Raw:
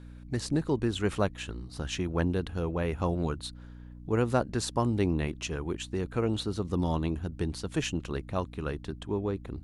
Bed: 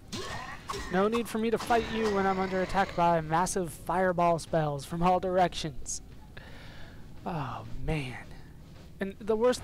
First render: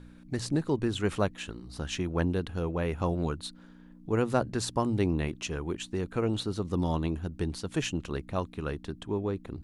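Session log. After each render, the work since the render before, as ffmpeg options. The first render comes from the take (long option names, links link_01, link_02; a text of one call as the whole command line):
ffmpeg -i in.wav -af "bandreject=frequency=60:width_type=h:width=4,bandreject=frequency=120:width_type=h:width=4" out.wav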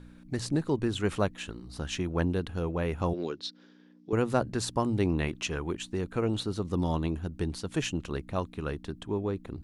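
ffmpeg -i in.wav -filter_complex "[0:a]asettb=1/sr,asplit=3[link_01][link_02][link_03];[link_01]atrim=end=3.134[link_04];[link_02]atrim=start=3.13:end=4.13,asetpts=PTS-STARTPTS,afade=type=in:duration=0.004:curve=qsin,afade=type=out:start_time=0.996:duration=0.004:curve=qsin,highpass=290,equalizer=frequency=380:width_type=q:width=4:gain=5,equalizer=frequency=660:width_type=q:width=4:gain=-5,equalizer=frequency=940:width_type=q:width=4:gain=-7,equalizer=frequency=1300:width_type=q:width=4:gain=-6,equalizer=frequency=3500:width_type=q:width=4:gain=3,equalizer=frequency=5300:width_type=q:width=4:gain=9,lowpass=frequency=6100:width=0.5412,lowpass=frequency=6100:width=1.3066[link_05];[link_03]atrim=start=4.126[link_06];[link_04][link_05]acrossfade=duration=0.004:curve1=hsin:curve2=qsin[link_07];[link_07][link_06]acrossfade=duration=0.004:curve1=qsin:curve2=hsin,asettb=1/sr,asplit=3[link_08][link_09][link_10];[link_08]atrim=end=5.054[link_11];[link_09]atrim=start=5.05:end=5.71,asetpts=PTS-STARTPTS,afade=type=in:duration=0.004:curve=qsin,afade=type=out:start_time=0.656:duration=0.004:curve=qsin,equalizer=frequency=1900:width_type=o:width=2.9:gain=4[link_12];[link_10]atrim=start=5.706[link_13];[link_11][link_12]acrossfade=duration=0.004:curve1=hsin:curve2=qsin[link_14];[link_14][link_13]acrossfade=duration=0.004:curve1=qsin:curve2=hsin" out.wav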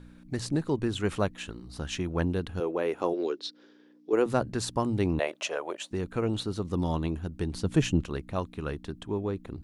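ffmpeg -i in.wav -filter_complex "[0:a]asettb=1/sr,asplit=3[link_01][link_02][link_03];[link_01]atrim=end=2.604[link_04];[link_02]atrim=start=2.6:end=4.26,asetpts=PTS-STARTPTS,afade=type=in:duration=0.004:curve=qsin,afade=type=out:start_time=1.656:duration=0.004:curve=qsin,highpass=frequency=370:width_type=q:width=1.8[link_05];[link_03]atrim=start=4.256[link_06];[link_04][link_05]acrossfade=duration=0.004:curve1=hsin:curve2=qsin[link_07];[link_07][link_06]acrossfade=duration=0.004:curve1=qsin:curve2=hsin,asettb=1/sr,asplit=3[link_08][link_09][link_10];[link_08]atrim=end=5.194[link_11];[link_09]atrim=start=5.19:end=5.91,asetpts=PTS-STARTPTS,afade=type=in:duration=0.004:curve=qsin,afade=type=out:start_time=0.716:duration=0.004:curve=qsin,highpass=frequency=590:width_type=q:width=6.4[link_12];[link_10]atrim=start=5.906[link_13];[link_11][link_12]acrossfade=duration=0.004:curve1=hsin:curve2=qsin[link_14];[link_14][link_13]acrossfade=duration=0.004:curve1=qsin:curve2=hsin,asettb=1/sr,asplit=3[link_15][link_16][link_17];[link_15]atrim=end=7.544[link_18];[link_16]atrim=start=7.54:end=8.04,asetpts=PTS-STARTPTS,afade=type=in:duration=0.004:curve=qsin,afade=type=out:start_time=0.496:duration=0.004:curve=qsin,lowshelf=frequency=420:gain=9.5[link_19];[link_17]atrim=start=8.036[link_20];[link_18][link_19]acrossfade=duration=0.004:curve1=hsin:curve2=qsin[link_21];[link_21][link_20]acrossfade=duration=0.004:curve1=qsin:curve2=hsin" out.wav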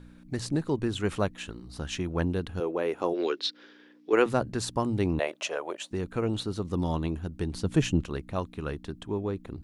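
ffmpeg -i in.wav -filter_complex "[0:a]asplit=3[link_01][link_02][link_03];[link_01]afade=type=out:start_time=3.14:duration=0.02[link_04];[link_02]equalizer=frequency=2200:width=0.52:gain=11,afade=type=in:start_time=3.14:duration=0.02,afade=type=out:start_time=4.28:duration=0.02[link_05];[link_03]afade=type=in:start_time=4.28:duration=0.02[link_06];[link_04][link_05][link_06]amix=inputs=3:normalize=0" out.wav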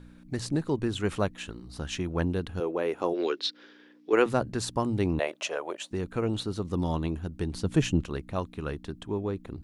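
ffmpeg -i in.wav -af anull out.wav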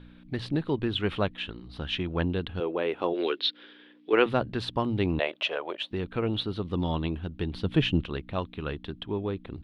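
ffmpeg -i in.wav -af "highshelf=frequency=4900:width_type=q:width=3:gain=-13.5" out.wav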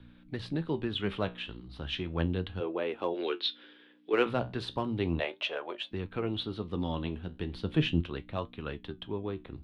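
ffmpeg -i in.wav -filter_complex "[0:a]flanger=delay=8:depth=9.3:regen=66:speed=0.35:shape=triangular,acrossover=split=130|920|1300[link_01][link_02][link_03][link_04];[link_03]asoftclip=type=hard:threshold=-39dB[link_05];[link_01][link_02][link_05][link_04]amix=inputs=4:normalize=0" out.wav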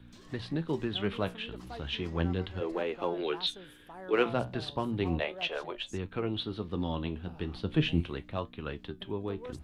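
ffmpeg -i in.wav -i bed.wav -filter_complex "[1:a]volume=-19dB[link_01];[0:a][link_01]amix=inputs=2:normalize=0" out.wav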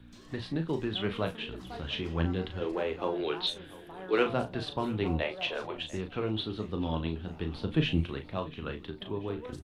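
ffmpeg -i in.wav -filter_complex "[0:a]asplit=2[link_01][link_02];[link_02]adelay=37,volume=-8dB[link_03];[link_01][link_03]amix=inputs=2:normalize=0,aecho=1:1:693|1386|2079|2772:0.106|0.053|0.0265|0.0132" out.wav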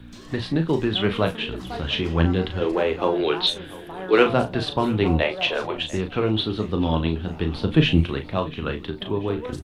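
ffmpeg -i in.wav -af "volume=10dB" out.wav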